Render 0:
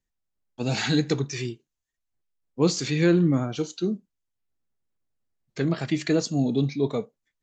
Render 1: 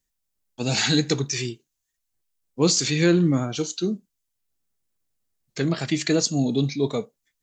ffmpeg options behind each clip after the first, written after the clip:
-af "highshelf=f=4k:g=11.5,volume=1dB"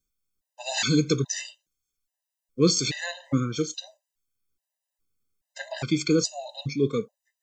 -af "afftfilt=real='re*gt(sin(2*PI*1.2*pts/sr)*(1-2*mod(floor(b*sr/1024/520),2)),0)':imag='im*gt(sin(2*PI*1.2*pts/sr)*(1-2*mod(floor(b*sr/1024/520),2)),0)':win_size=1024:overlap=0.75"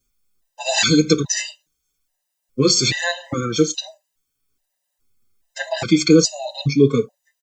-filter_complex "[0:a]asplit=2[a][b];[b]alimiter=limit=-17.5dB:level=0:latency=1:release=89,volume=2.5dB[c];[a][c]amix=inputs=2:normalize=0,asplit=2[d][e];[e]adelay=5.1,afreqshift=-0.41[f];[d][f]amix=inputs=2:normalize=1,volume=5.5dB"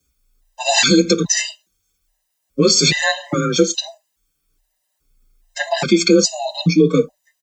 -af "alimiter=limit=-7.5dB:level=0:latency=1:release=127,afreqshift=28,volume=4.5dB"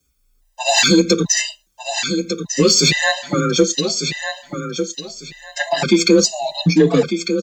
-filter_complex "[0:a]aecho=1:1:1199|2398|3597:0.376|0.0827|0.0182,asplit=2[a][b];[b]asoftclip=type=hard:threshold=-13dB,volume=-12dB[c];[a][c]amix=inputs=2:normalize=0,volume=-1dB"

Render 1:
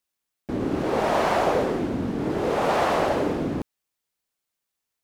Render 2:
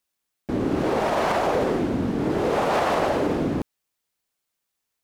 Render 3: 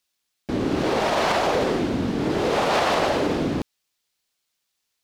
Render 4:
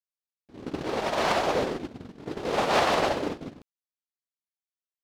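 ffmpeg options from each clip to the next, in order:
-af "alimiter=limit=-16dB:level=0:latency=1:release=42,volume=2.5dB"
-af "equalizer=f=4.2k:w=0.67:g=8"
-af "agate=range=-28dB:threshold=-20dB:ratio=16:detection=peak"

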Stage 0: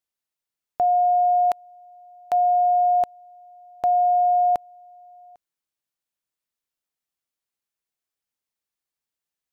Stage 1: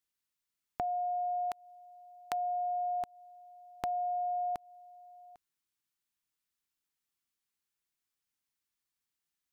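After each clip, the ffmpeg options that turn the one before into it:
-af "equalizer=f=590:t=o:w=0.72:g=-11.5,acompressor=threshold=-33dB:ratio=5"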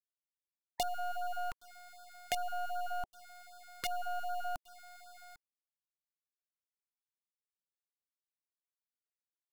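-af "aeval=exprs='(mod(14.1*val(0)+1,2)-1)/14.1':c=same,acrusher=bits=6:dc=4:mix=0:aa=0.000001,afftfilt=real='re*(1-between(b*sr/1024,300*pow(2200/300,0.5+0.5*sin(2*PI*2.6*pts/sr))/1.41,300*pow(2200/300,0.5+0.5*sin(2*PI*2.6*pts/sr))*1.41))':imag='im*(1-between(b*sr/1024,300*pow(2200/300,0.5+0.5*sin(2*PI*2.6*pts/sr))/1.41,300*pow(2200/300,0.5+0.5*sin(2*PI*2.6*pts/sr))*1.41))':win_size=1024:overlap=0.75,volume=1dB"

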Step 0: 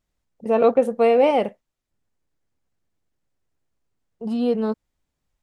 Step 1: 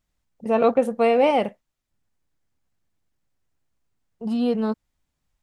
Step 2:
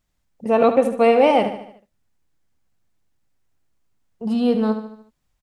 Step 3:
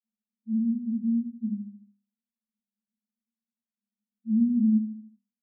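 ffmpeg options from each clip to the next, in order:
-af "equalizer=f=440:t=o:w=1.1:g=-4.5,volume=1.5dB"
-af "aecho=1:1:74|148|222|296|370:0.316|0.158|0.0791|0.0395|0.0198,volume=3dB"
-af "asuperpass=centerf=220:order=20:qfactor=5.5"

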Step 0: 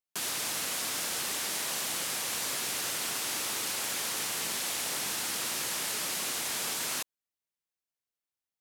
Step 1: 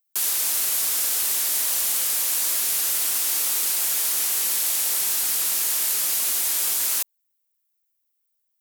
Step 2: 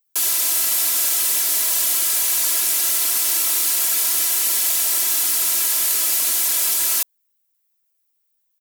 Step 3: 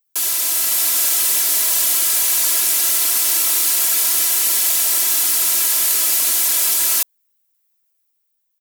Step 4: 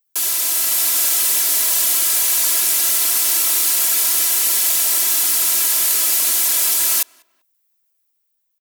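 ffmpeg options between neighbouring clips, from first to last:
-af "aemphasis=mode=production:type=bsi"
-af "asoftclip=type=tanh:threshold=-11dB,aecho=1:1:3:0.88,volume=2dB"
-af "dynaudnorm=f=120:g=11:m=3dB"
-filter_complex "[0:a]acrusher=bits=8:mode=log:mix=0:aa=0.000001,asplit=2[a][b];[b]adelay=195,lowpass=f=2.3k:p=1,volume=-24dB,asplit=2[c][d];[d]adelay=195,lowpass=f=2.3k:p=1,volume=0.33[e];[a][c][e]amix=inputs=3:normalize=0"

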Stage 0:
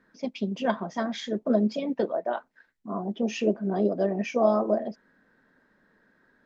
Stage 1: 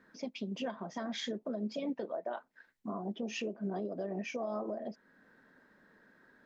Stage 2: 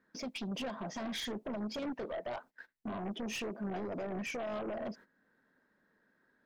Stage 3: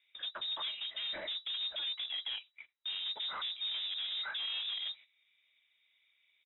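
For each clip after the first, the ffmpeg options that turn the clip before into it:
-af "acompressor=threshold=-24dB:ratio=6,alimiter=level_in=5dB:limit=-24dB:level=0:latency=1:release=391,volume=-5dB,lowshelf=f=79:g=-7.5,volume=1dB"
-af "alimiter=level_in=9dB:limit=-24dB:level=0:latency=1:release=160,volume=-9dB,agate=range=-17dB:threshold=-58dB:ratio=16:detection=peak,aeval=exprs='0.0237*(cos(1*acos(clip(val(0)/0.0237,-1,1)))-cos(1*PI/2))+0.00299*(cos(2*acos(clip(val(0)/0.0237,-1,1)))-cos(2*PI/2))+0.00473*(cos(5*acos(clip(val(0)/0.0237,-1,1)))-cos(5*PI/2))':c=same,volume=1.5dB"
-af "aresample=16000,acrusher=bits=4:mode=log:mix=0:aa=0.000001,aresample=44100,lowpass=f=3.3k:t=q:w=0.5098,lowpass=f=3.3k:t=q:w=0.6013,lowpass=f=3.3k:t=q:w=0.9,lowpass=f=3.3k:t=q:w=2.563,afreqshift=-3900"

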